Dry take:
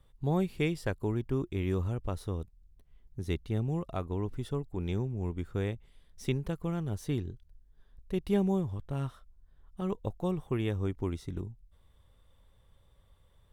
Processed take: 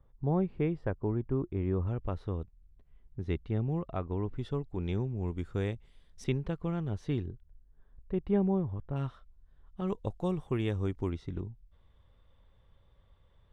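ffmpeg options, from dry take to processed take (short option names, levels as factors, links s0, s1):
-af "asetnsamples=n=441:p=0,asendcmd='1.87 lowpass f 2500;4.38 lowpass f 4300;5.28 lowpass f 8300;6.24 lowpass f 3600;7.26 lowpass f 1600;8.96 lowpass f 4000;9.88 lowpass f 8300;11.1 lowpass f 3600',lowpass=1300"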